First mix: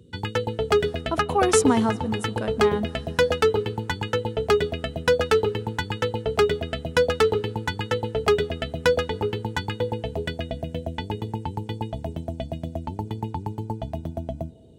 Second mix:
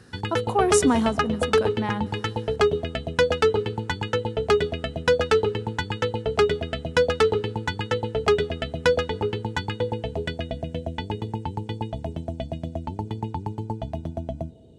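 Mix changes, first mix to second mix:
speech: entry −0.80 s
background: add low-pass filter 8,600 Hz 12 dB per octave

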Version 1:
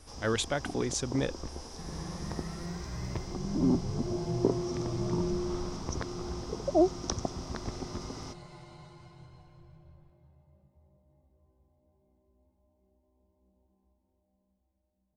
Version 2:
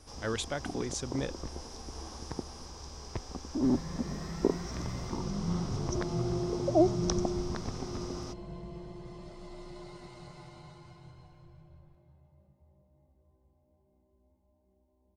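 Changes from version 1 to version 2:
speech −4.0 dB
second sound: entry +1.85 s

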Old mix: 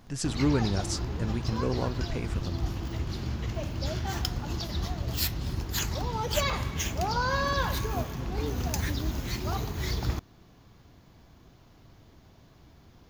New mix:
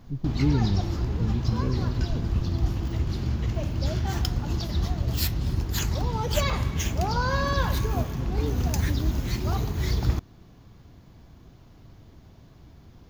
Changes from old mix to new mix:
speech: add Gaussian smoothing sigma 22 samples
master: add low-shelf EQ 340 Hz +6.5 dB

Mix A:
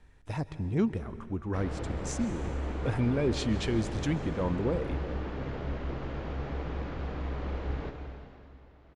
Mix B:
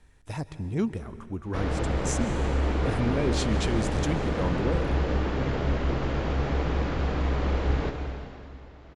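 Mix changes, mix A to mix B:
background +8.5 dB
master: add high-shelf EQ 6,400 Hz +12 dB

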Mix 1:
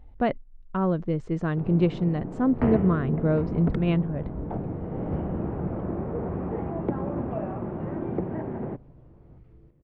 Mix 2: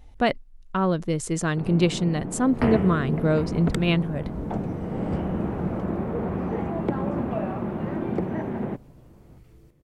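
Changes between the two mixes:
first sound: add parametric band 210 Hz +6 dB 0.41 octaves
master: remove head-to-tape spacing loss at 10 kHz 42 dB

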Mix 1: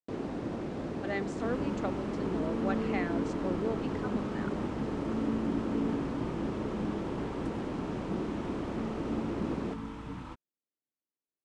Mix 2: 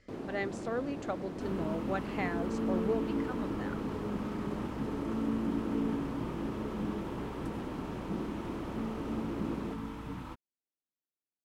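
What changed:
speech: entry −0.75 s
first sound −4.5 dB
master: remove low-pass filter 9,000 Hz 24 dB per octave

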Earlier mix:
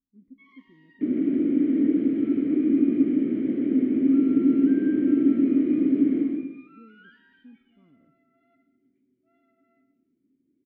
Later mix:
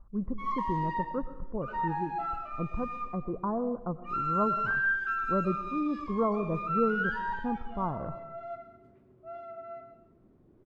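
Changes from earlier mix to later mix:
speech +9.5 dB
second sound: muted
master: remove formant filter i

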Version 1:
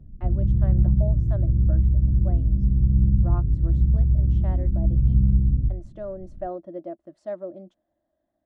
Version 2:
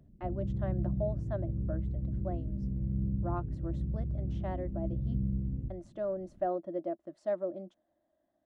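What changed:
background: add spectral tilt +2.5 dB per octave
master: add low-shelf EQ 100 Hz −9.5 dB

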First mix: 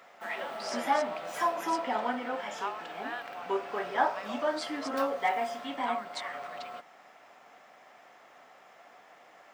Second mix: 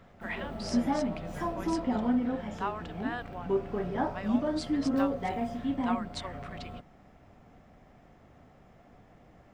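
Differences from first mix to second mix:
background −9.5 dB
master: remove high-pass filter 830 Hz 12 dB per octave

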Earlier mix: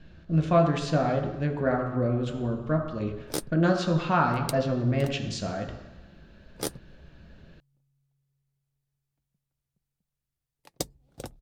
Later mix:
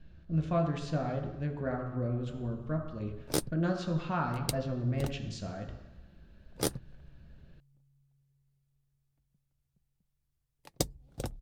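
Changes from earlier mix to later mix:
speech −10.0 dB
master: add low-shelf EQ 130 Hz +9.5 dB

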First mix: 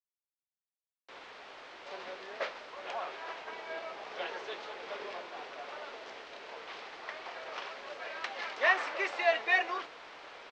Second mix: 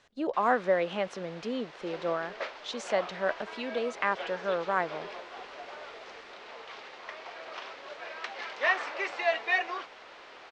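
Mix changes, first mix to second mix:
speech: unmuted
first sound: entry −0.75 s

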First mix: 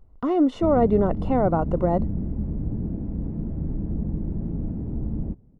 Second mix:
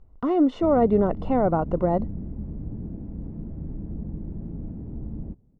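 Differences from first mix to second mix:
speech: add high-frequency loss of the air 75 metres
background −6.0 dB

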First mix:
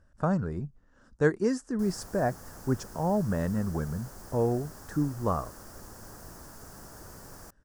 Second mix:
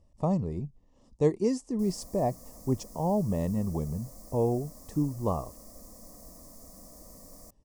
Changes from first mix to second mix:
background: add phaser with its sweep stopped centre 580 Hz, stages 8
master: add Butterworth band-reject 1,500 Hz, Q 1.4

